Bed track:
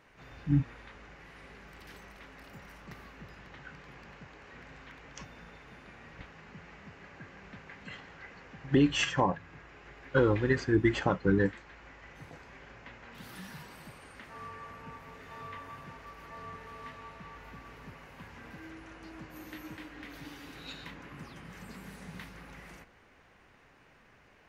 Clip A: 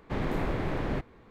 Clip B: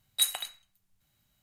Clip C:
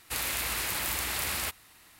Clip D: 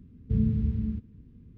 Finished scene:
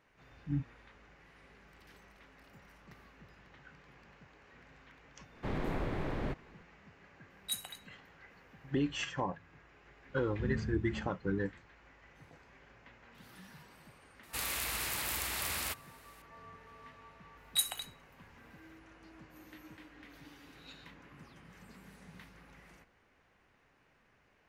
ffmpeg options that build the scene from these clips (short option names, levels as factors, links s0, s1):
-filter_complex "[2:a]asplit=2[s0][s1];[0:a]volume=0.376[s2];[1:a]atrim=end=1.3,asetpts=PTS-STARTPTS,volume=0.531,afade=t=in:d=0.004:c=hsin,afade=t=out:st=1.296:d=0.004:c=hsin,adelay=235053S[s3];[s0]atrim=end=1.42,asetpts=PTS-STARTPTS,volume=0.266,afade=t=in:d=0.004:c=hsin,afade=t=out:st=1.416:d=0.004:c=hsin,adelay=321930S[s4];[4:a]atrim=end=1.57,asetpts=PTS-STARTPTS,volume=0.251,afade=t=in:d=0.004:c=hsin,afade=t=out:st=1.566:d=0.004:c=hsin,adelay=10090[s5];[3:a]atrim=end=1.99,asetpts=PTS-STARTPTS,volume=0.562,afade=t=in:d=0.004:c=hsin,afade=t=out:st=1.986:d=0.004:c=hsin,adelay=14230[s6];[s1]atrim=end=1.42,asetpts=PTS-STARTPTS,volume=0.562,afade=t=in:d=0.004:c=hsin,afade=t=out:st=1.416:d=0.004:c=hsin,adelay=17370[s7];[s2][s3][s4][s5][s6][s7]amix=inputs=6:normalize=0"